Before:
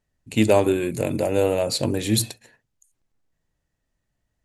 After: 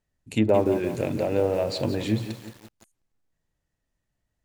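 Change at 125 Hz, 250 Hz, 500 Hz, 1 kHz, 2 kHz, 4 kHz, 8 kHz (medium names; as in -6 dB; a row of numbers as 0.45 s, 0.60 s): -2.5 dB, -2.5 dB, -2.5 dB, -3.0 dB, -5.5 dB, -8.0 dB, -16.0 dB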